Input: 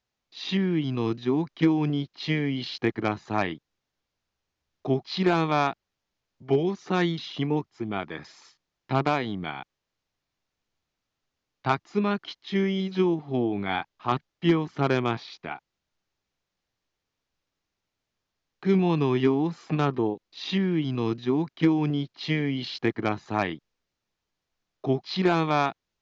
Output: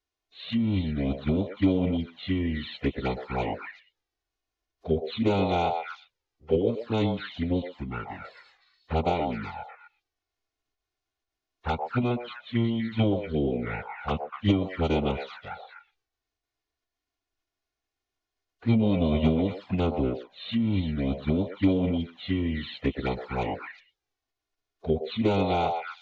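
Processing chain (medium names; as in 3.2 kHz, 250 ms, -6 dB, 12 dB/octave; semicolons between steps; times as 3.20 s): formant-preserving pitch shift -9 st; repeats whose band climbs or falls 122 ms, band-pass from 660 Hz, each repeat 1.4 oct, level -1.5 dB; touch-sensitive flanger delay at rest 2.8 ms, full sweep at -22 dBFS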